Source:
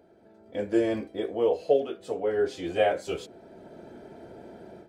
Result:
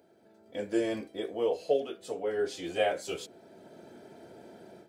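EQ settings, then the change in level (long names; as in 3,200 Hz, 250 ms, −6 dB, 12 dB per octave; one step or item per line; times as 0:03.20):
high-pass filter 100 Hz
high-shelf EQ 3,100 Hz +10 dB
−5.0 dB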